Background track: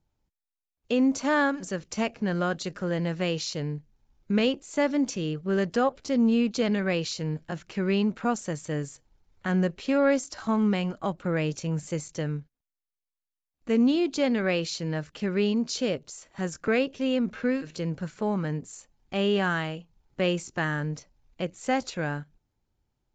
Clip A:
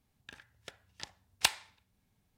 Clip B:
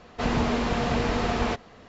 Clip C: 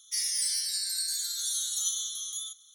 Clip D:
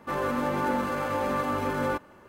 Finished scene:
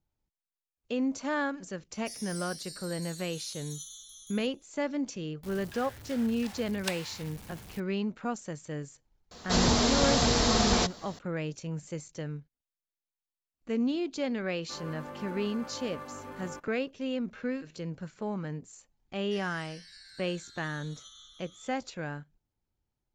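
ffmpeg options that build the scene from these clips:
-filter_complex "[3:a]asplit=2[a][b];[0:a]volume=-7dB[c];[1:a]aeval=exprs='val(0)+0.5*0.0211*sgn(val(0))':c=same[d];[2:a]aexciter=amount=7.6:drive=1.2:freq=3.7k[e];[b]lowpass=1.6k[f];[a]atrim=end=2.74,asetpts=PTS-STARTPTS,volume=-14dB,afade=t=in:d=0.004:c=hsin,afade=t=out:st=2.736:d=0.004:c=hsin,adelay=1940[g];[d]atrim=end=2.37,asetpts=PTS-STARTPTS,volume=-8.5dB,afade=t=in:d=0.004:c=hsin,afade=t=out:st=2.366:d=0.004:c=hsin,adelay=5430[h];[e]atrim=end=1.88,asetpts=PTS-STARTPTS,volume=-1dB,afade=t=in:d=0.004:c=hsin,afade=t=out:st=1.876:d=0.004:c=hsin,adelay=9310[i];[4:a]atrim=end=2.28,asetpts=PTS-STARTPTS,volume=-15dB,afade=t=in:d=0.004:c=hsin,afade=t=out:st=2.276:d=0.004:c=hsin,adelay=14620[j];[f]atrim=end=2.74,asetpts=PTS-STARTPTS,volume=-0.5dB,afade=t=in:d=0.004:c=hsin,afade=t=out:st=2.736:d=0.004:c=hsin,adelay=19190[k];[c][g][h][i][j][k]amix=inputs=6:normalize=0"

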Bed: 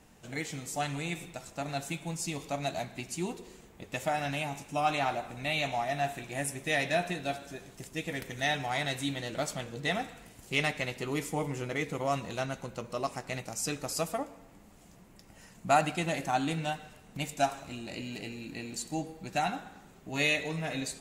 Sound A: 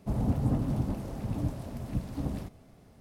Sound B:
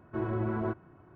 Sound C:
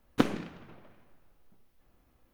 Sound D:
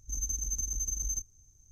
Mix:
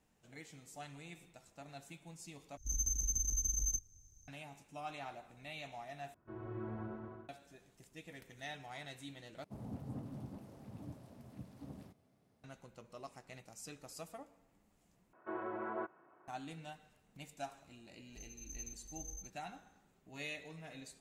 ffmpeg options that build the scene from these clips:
-filter_complex "[4:a]asplit=2[a][b];[2:a]asplit=2[c][d];[0:a]volume=-16.5dB[e];[c]aecho=1:1:120|216|292.8|354.2|403.4:0.794|0.631|0.501|0.398|0.316[f];[1:a]highpass=110[g];[d]highpass=520,lowpass=2.3k[h];[b]tremolo=f=2:d=0.69[i];[e]asplit=5[j][k][l][m][n];[j]atrim=end=2.574[o];[a]atrim=end=1.71,asetpts=PTS-STARTPTS,volume=-2dB[p];[k]atrim=start=4.276:end=6.144[q];[f]atrim=end=1.15,asetpts=PTS-STARTPTS,volume=-16dB[r];[l]atrim=start=7.286:end=9.444[s];[g]atrim=end=3,asetpts=PTS-STARTPTS,volume=-15.5dB[t];[m]atrim=start=12.436:end=15.134[u];[h]atrim=end=1.15,asetpts=PTS-STARTPTS,volume=-2.5dB[v];[n]atrim=start=16.276[w];[i]atrim=end=1.71,asetpts=PTS-STARTPTS,volume=-13dB,afade=t=in:d=0.004:c=hsin,afade=t=out:st=1.706:d=0.004:c=hsin,adelay=18080[x];[o][p]acrossfade=d=0.004:c1=hsin:c2=hsin[y];[y][q]acrossfade=d=0.004:c1=hsin:c2=hsin[z];[z][r]acrossfade=d=0.004:c1=hsin:c2=hsin[aa];[aa][s]acrossfade=d=0.004:c1=hsin:c2=hsin[ab];[ab][t]acrossfade=d=0.004:c1=hsin:c2=hsin[ac];[ac][u]acrossfade=d=0.004:c1=hsin:c2=hsin[ad];[ad][v]acrossfade=d=0.004:c1=hsin:c2=hsin[ae];[ae][w]acrossfade=d=0.004:c1=hsin:c2=hsin[af];[af][x]amix=inputs=2:normalize=0"

